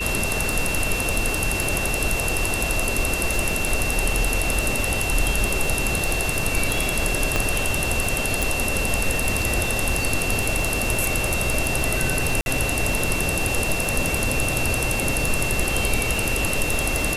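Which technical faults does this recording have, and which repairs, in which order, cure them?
crackle 42 per s -26 dBFS
whine 2.7 kHz -26 dBFS
7.36 s: pop -5 dBFS
8.42 s: pop
12.41–12.46 s: dropout 51 ms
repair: de-click; band-stop 2.7 kHz, Q 30; interpolate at 12.41 s, 51 ms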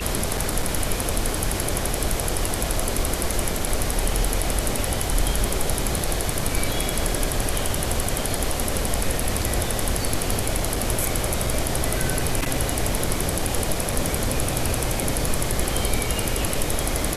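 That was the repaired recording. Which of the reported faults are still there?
7.36 s: pop

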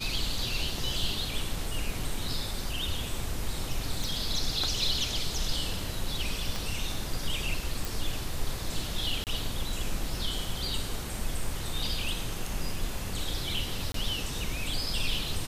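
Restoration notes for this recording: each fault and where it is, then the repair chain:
4.04 s: pop
6.56 s: pop
7.85 s: pop
9.24–9.27 s: dropout 28 ms
13.92–13.94 s: dropout 23 ms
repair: de-click; interpolate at 9.24 s, 28 ms; interpolate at 13.92 s, 23 ms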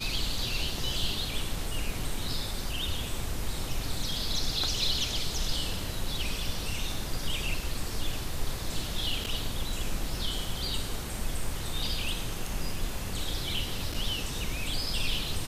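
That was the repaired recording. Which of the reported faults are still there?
6.56 s: pop

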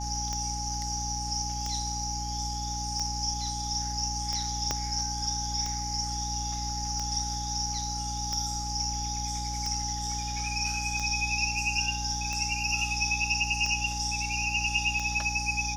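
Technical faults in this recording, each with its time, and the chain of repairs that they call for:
hum 60 Hz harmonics 5 -36 dBFS
tick 45 rpm -20 dBFS
whine 830 Hz -36 dBFS
4.71 s: pop -13 dBFS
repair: de-click; band-stop 830 Hz, Q 30; de-hum 60 Hz, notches 5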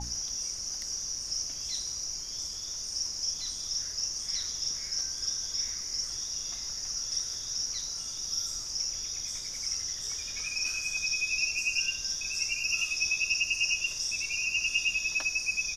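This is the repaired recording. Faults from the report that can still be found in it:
4.71 s: pop

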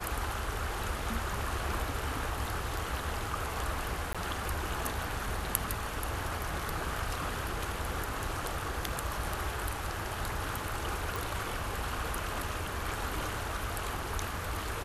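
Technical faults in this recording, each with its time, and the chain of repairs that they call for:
4.13–4.15 s: dropout 16 ms
11.16 s: pop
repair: de-click; interpolate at 4.13 s, 16 ms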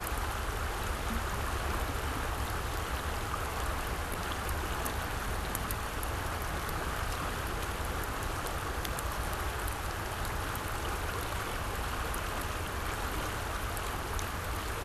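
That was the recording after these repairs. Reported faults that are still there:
nothing left

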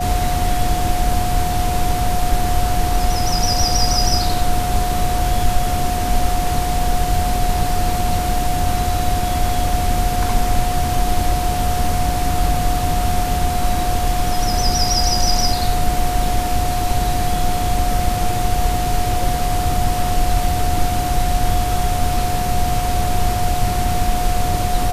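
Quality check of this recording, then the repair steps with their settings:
whine 720 Hz -21 dBFS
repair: band-stop 720 Hz, Q 30

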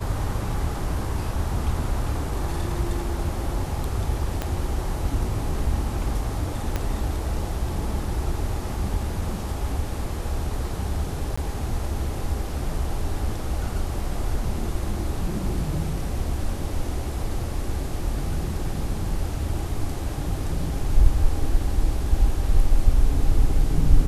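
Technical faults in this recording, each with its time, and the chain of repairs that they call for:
4.42 s: pop -12 dBFS
6.76 s: pop -12 dBFS
11.36–11.38 s: dropout 15 ms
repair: de-click; interpolate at 11.36 s, 15 ms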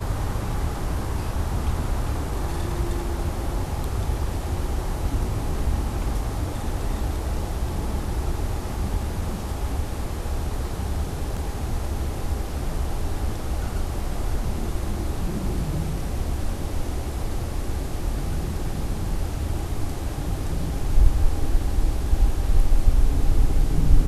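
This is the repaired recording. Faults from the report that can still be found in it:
4.42 s: pop
6.76 s: pop

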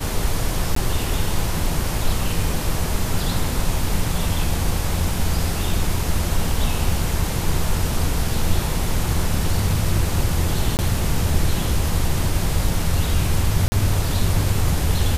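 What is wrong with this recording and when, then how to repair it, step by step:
0.75–0.76 s: dropout 14 ms
10.77–10.79 s: dropout 19 ms
13.68–13.72 s: dropout 40 ms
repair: interpolate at 0.75 s, 14 ms; interpolate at 10.77 s, 19 ms; interpolate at 13.68 s, 40 ms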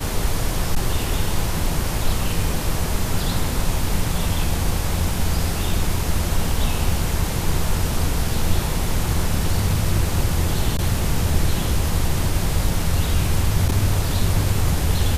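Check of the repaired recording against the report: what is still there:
nothing left

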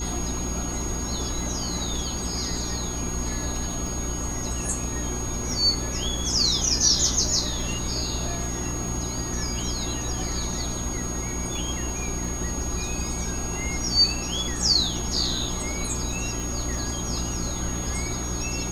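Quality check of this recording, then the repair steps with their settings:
crackle 20 per s -32 dBFS
hum 60 Hz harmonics 6 -32 dBFS
whine 6.6 kHz -32 dBFS
16.40 s: pop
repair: de-click; de-hum 60 Hz, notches 6; band-stop 6.6 kHz, Q 30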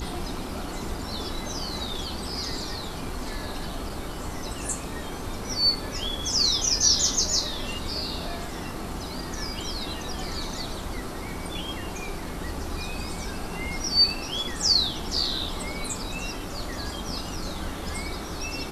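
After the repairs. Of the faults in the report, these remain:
nothing left

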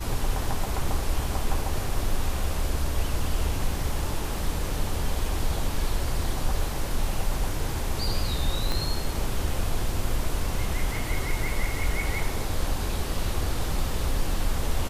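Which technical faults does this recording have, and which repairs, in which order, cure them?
8.72 s: pop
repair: de-click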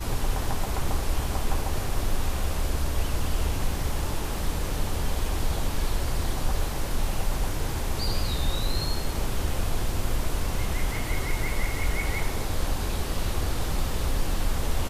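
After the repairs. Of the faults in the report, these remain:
8.72 s: pop

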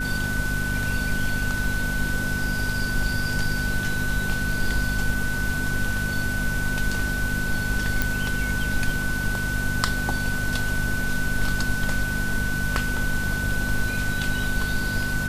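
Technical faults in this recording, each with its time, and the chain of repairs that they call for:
hum 50 Hz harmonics 5 -30 dBFS
whine 1.5 kHz -27 dBFS
8.02 s: pop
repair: de-click; de-hum 50 Hz, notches 5; band-stop 1.5 kHz, Q 30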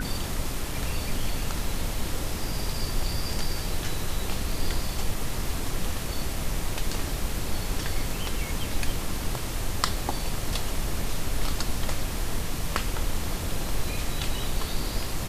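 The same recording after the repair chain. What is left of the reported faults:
nothing left

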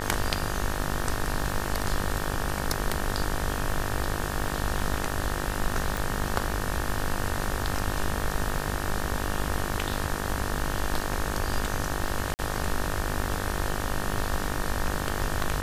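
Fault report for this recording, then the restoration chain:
buzz 50 Hz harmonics 37 -33 dBFS
crackle 22 per s -35 dBFS
5.97 s: pop
12.34–12.39 s: dropout 49 ms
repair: de-click; de-hum 50 Hz, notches 37; interpolate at 12.34 s, 49 ms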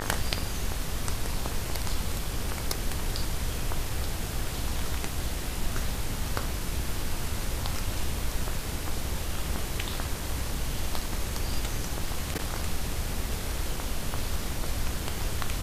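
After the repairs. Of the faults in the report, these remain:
5.97 s: pop

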